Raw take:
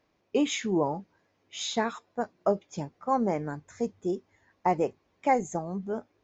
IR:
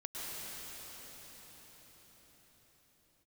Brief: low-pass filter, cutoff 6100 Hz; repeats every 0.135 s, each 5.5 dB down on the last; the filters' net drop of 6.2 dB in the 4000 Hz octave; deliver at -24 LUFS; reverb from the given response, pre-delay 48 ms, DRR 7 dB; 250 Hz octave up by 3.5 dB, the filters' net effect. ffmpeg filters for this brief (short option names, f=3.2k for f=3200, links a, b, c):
-filter_complex "[0:a]lowpass=6.1k,equalizer=f=250:t=o:g=4.5,equalizer=f=4k:t=o:g=-7,aecho=1:1:135|270|405|540|675|810|945:0.531|0.281|0.149|0.079|0.0419|0.0222|0.0118,asplit=2[a][b];[1:a]atrim=start_sample=2205,adelay=48[c];[b][c]afir=irnorm=-1:irlink=0,volume=-9.5dB[d];[a][d]amix=inputs=2:normalize=0,volume=3dB"